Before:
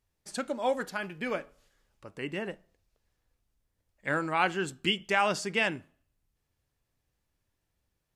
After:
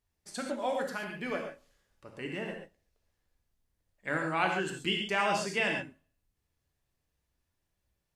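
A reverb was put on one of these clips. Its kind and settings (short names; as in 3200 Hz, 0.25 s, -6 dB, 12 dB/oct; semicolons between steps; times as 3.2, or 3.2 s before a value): non-linear reverb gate 0.16 s flat, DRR 1.5 dB; gain -4 dB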